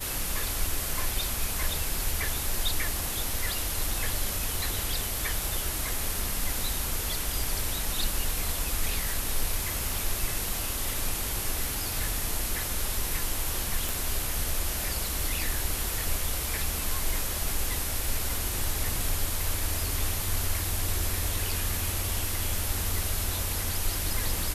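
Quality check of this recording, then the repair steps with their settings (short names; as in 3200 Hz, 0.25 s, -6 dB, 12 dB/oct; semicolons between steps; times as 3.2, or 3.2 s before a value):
13.89 pop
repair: de-click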